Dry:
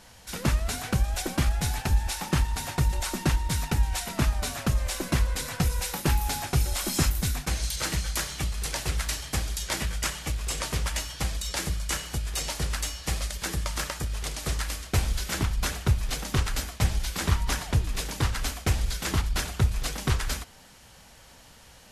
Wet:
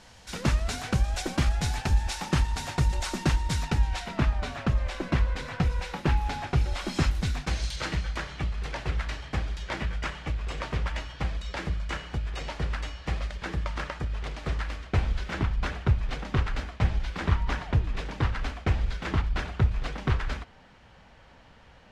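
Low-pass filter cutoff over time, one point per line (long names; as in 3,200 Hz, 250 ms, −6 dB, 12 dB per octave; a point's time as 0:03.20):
0:03.51 6,800 Hz
0:04.25 2,900 Hz
0:06.52 2,900 Hz
0:07.62 4,800 Hz
0:08.14 2,500 Hz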